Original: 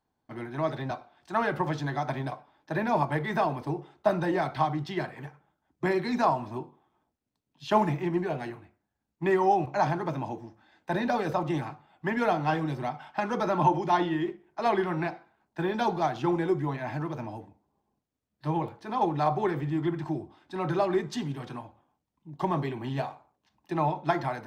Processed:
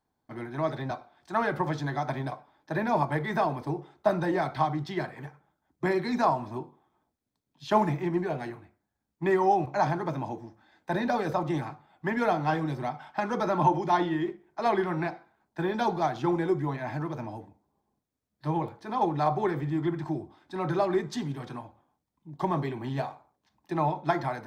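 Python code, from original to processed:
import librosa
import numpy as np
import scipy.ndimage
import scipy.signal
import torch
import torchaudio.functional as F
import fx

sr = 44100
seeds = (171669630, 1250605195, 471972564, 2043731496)

y = fx.peak_eq(x, sr, hz=2800.0, db=-6.5, octaves=0.23)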